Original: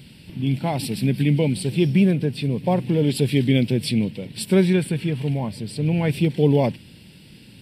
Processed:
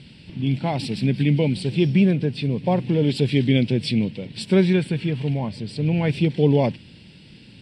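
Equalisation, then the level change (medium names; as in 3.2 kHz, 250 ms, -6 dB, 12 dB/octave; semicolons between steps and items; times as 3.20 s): Bessel low-pass 8.9 kHz, order 2; distance through air 120 m; treble shelf 4.8 kHz +11 dB; 0.0 dB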